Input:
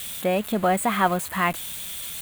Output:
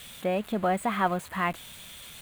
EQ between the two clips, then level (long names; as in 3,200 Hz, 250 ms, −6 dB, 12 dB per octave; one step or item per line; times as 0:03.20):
low-pass filter 3,400 Hz 6 dB per octave
−4.5 dB